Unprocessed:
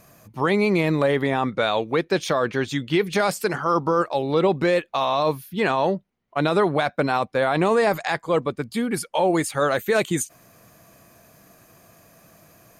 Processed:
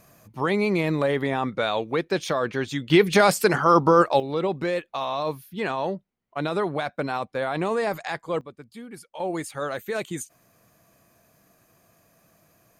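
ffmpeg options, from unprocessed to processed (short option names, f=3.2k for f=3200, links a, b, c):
-af "asetnsamples=n=441:p=0,asendcmd='2.9 volume volume 4dB;4.2 volume volume -6dB;8.41 volume volume -16dB;9.2 volume volume -8.5dB',volume=-3dB"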